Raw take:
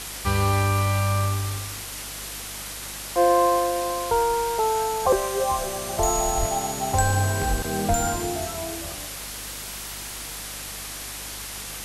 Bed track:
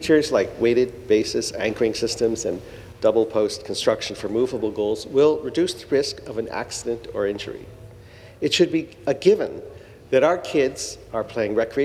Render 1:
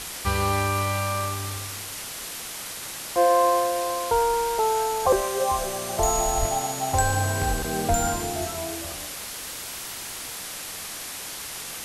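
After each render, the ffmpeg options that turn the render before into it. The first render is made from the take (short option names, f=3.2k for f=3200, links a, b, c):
-af "bandreject=f=50:t=h:w=4,bandreject=f=100:t=h:w=4,bandreject=f=150:t=h:w=4,bandreject=f=200:t=h:w=4,bandreject=f=250:t=h:w=4,bandreject=f=300:t=h:w=4,bandreject=f=350:t=h:w=4,bandreject=f=400:t=h:w=4"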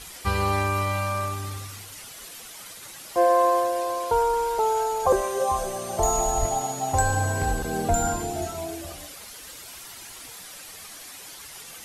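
-af "afftdn=nr=10:nf=-36"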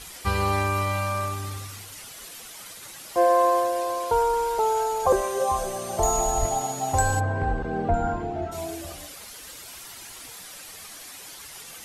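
-filter_complex "[0:a]asplit=3[a][b][c];[a]afade=t=out:st=7.19:d=0.02[d];[b]lowpass=1.8k,afade=t=in:st=7.19:d=0.02,afade=t=out:st=8.51:d=0.02[e];[c]afade=t=in:st=8.51:d=0.02[f];[d][e][f]amix=inputs=3:normalize=0"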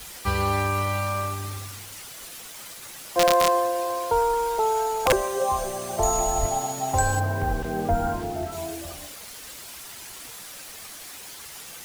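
-filter_complex "[0:a]acrossover=split=100|6100[a][b][c];[b]aeval=exprs='(mod(3.55*val(0)+1,2)-1)/3.55':c=same[d];[a][d][c]amix=inputs=3:normalize=0,acrusher=bits=6:mix=0:aa=0.000001"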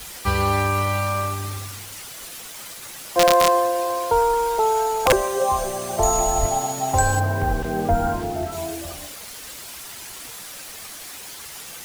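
-af "volume=3.5dB"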